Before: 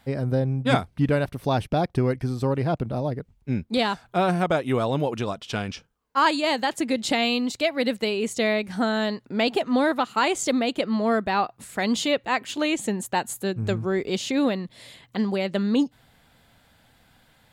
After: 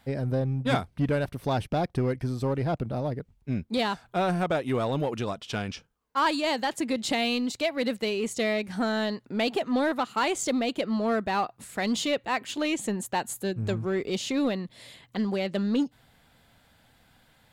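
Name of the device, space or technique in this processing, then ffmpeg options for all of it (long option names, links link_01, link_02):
parallel distortion: -filter_complex "[0:a]asplit=2[link_01][link_02];[link_02]asoftclip=type=hard:threshold=-23.5dB,volume=-4dB[link_03];[link_01][link_03]amix=inputs=2:normalize=0,volume=-6.5dB"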